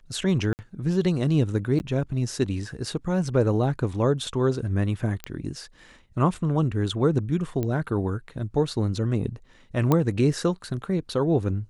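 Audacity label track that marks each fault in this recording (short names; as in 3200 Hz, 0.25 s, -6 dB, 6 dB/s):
0.530000	0.590000	gap 59 ms
1.790000	1.800000	gap 9.9 ms
5.240000	5.240000	pop -15 dBFS
7.630000	7.630000	pop -16 dBFS
9.920000	9.920000	pop -9 dBFS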